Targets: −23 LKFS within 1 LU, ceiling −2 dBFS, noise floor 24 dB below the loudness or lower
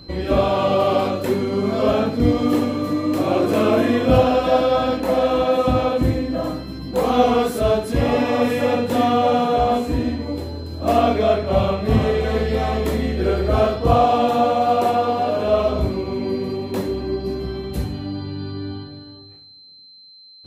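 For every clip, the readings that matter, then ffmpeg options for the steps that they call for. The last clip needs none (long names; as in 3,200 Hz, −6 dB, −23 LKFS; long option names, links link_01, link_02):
interfering tone 4,100 Hz; level of the tone −43 dBFS; integrated loudness −19.5 LKFS; sample peak −2.5 dBFS; target loudness −23.0 LKFS
→ -af "bandreject=frequency=4100:width=30"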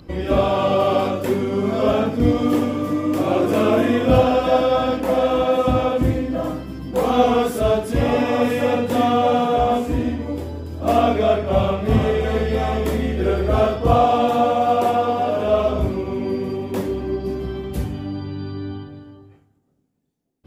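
interfering tone none found; integrated loudness −19.5 LKFS; sample peak −2.5 dBFS; target loudness −23.0 LKFS
→ -af "volume=-3.5dB"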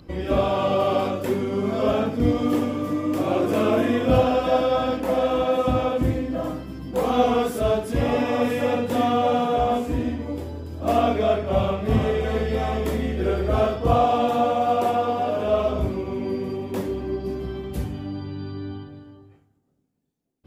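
integrated loudness −23.0 LKFS; sample peak −6.0 dBFS; background noise floor −59 dBFS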